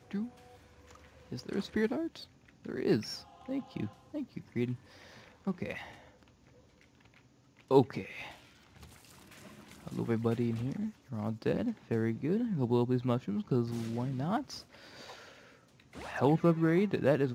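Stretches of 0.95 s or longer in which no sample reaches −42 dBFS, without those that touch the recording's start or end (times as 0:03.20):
0:05.91–0:07.71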